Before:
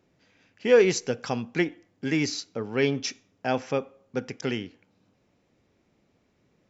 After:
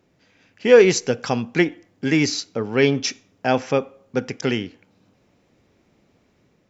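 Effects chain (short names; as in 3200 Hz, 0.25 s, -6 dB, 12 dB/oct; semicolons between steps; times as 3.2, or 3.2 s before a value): AGC gain up to 3 dB; gain +4 dB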